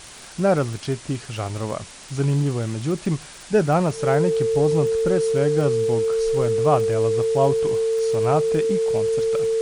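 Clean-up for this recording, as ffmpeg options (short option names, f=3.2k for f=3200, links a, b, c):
-af "adeclick=t=4,bandreject=f=450:w=30,afwtdn=0.011"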